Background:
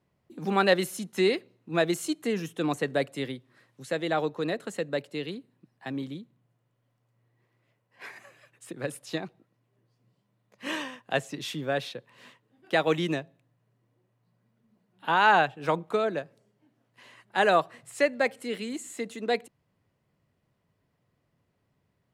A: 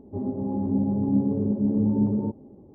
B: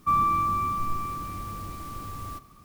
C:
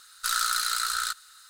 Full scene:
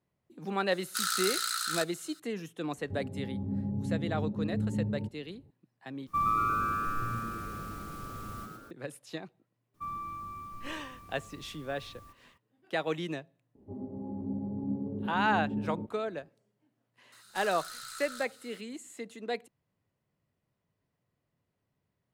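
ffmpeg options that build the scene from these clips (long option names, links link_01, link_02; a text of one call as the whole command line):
ffmpeg -i bed.wav -i cue0.wav -i cue1.wav -i cue2.wav -filter_complex "[3:a]asplit=2[link_01][link_02];[1:a]asplit=2[link_03][link_04];[2:a]asplit=2[link_05][link_06];[0:a]volume=-7.5dB[link_07];[link_01]highpass=1200[link_08];[link_03]lowshelf=frequency=200:width_type=q:width=1.5:gain=8[link_09];[link_05]asplit=7[link_10][link_11][link_12][link_13][link_14][link_15][link_16];[link_11]adelay=116,afreqshift=110,volume=-4dB[link_17];[link_12]adelay=232,afreqshift=220,volume=-10.2dB[link_18];[link_13]adelay=348,afreqshift=330,volume=-16.4dB[link_19];[link_14]adelay=464,afreqshift=440,volume=-22.6dB[link_20];[link_15]adelay=580,afreqshift=550,volume=-28.8dB[link_21];[link_16]adelay=696,afreqshift=660,volume=-35dB[link_22];[link_10][link_17][link_18][link_19][link_20][link_21][link_22]amix=inputs=7:normalize=0[link_23];[link_02]acompressor=threshold=-38dB:ratio=3:attack=0.62:release=23:knee=1:detection=peak[link_24];[link_07]asplit=2[link_25][link_26];[link_25]atrim=end=6.074[link_27];[link_23]atrim=end=2.64,asetpts=PTS-STARTPTS,volume=-6.5dB[link_28];[link_26]atrim=start=8.706[link_29];[link_08]atrim=end=1.49,asetpts=PTS-STARTPTS,volume=-4dB,afade=type=in:duration=0.004:curve=hsin,afade=type=out:start_time=1.486:duration=0.004:curve=hsin,adelay=710[link_30];[link_09]atrim=end=2.74,asetpts=PTS-STARTPTS,volume=-13dB,afade=type=in:duration=0.004:curve=hsin,afade=type=out:start_time=2.736:duration=0.004:curve=hsin,adelay=2770[link_31];[link_06]atrim=end=2.64,asetpts=PTS-STARTPTS,volume=-16dB,afade=type=in:duration=0.004:curve=hsin,afade=type=out:start_time=2.636:duration=0.004:curve=hsin,adelay=9740[link_32];[link_04]atrim=end=2.74,asetpts=PTS-STARTPTS,volume=-11.5dB,afade=type=in:duration=0.004:curve=hsin,afade=type=out:start_time=2.736:duration=0.004:curve=hsin,adelay=13550[link_33];[link_24]atrim=end=1.49,asetpts=PTS-STARTPTS,volume=-6dB,afade=type=in:duration=0.004:curve=hsin,afade=type=out:start_time=1.486:duration=0.004:curve=hsin,adelay=17120[link_34];[link_27][link_28]acrossfade=duration=0.004:curve1=hsin:curve2=hsin[link_35];[link_35][link_29]acrossfade=duration=0.004:curve1=hsin:curve2=hsin[link_36];[link_36][link_30][link_31][link_32][link_33][link_34]amix=inputs=6:normalize=0" out.wav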